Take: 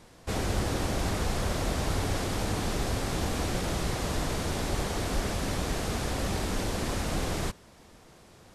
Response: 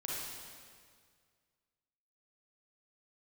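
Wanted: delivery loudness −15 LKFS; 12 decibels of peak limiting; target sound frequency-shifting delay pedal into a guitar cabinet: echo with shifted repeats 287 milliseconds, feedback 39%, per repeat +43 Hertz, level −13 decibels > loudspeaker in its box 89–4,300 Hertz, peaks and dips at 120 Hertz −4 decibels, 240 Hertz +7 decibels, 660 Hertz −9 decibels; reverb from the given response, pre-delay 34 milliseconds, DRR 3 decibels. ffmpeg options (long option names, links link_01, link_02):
-filter_complex "[0:a]alimiter=level_in=3.5dB:limit=-24dB:level=0:latency=1,volume=-3.5dB,asplit=2[link_01][link_02];[1:a]atrim=start_sample=2205,adelay=34[link_03];[link_02][link_03]afir=irnorm=-1:irlink=0,volume=-5dB[link_04];[link_01][link_04]amix=inputs=2:normalize=0,asplit=5[link_05][link_06][link_07][link_08][link_09];[link_06]adelay=287,afreqshift=43,volume=-13dB[link_10];[link_07]adelay=574,afreqshift=86,volume=-21.2dB[link_11];[link_08]adelay=861,afreqshift=129,volume=-29.4dB[link_12];[link_09]adelay=1148,afreqshift=172,volume=-37.5dB[link_13];[link_05][link_10][link_11][link_12][link_13]amix=inputs=5:normalize=0,highpass=89,equalizer=frequency=120:width_type=q:width=4:gain=-4,equalizer=frequency=240:width_type=q:width=4:gain=7,equalizer=frequency=660:width_type=q:width=4:gain=-9,lowpass=frequency=4300:width=0.5412,lowpass=frequency=4300:width=1.3066,volume=21.5dB"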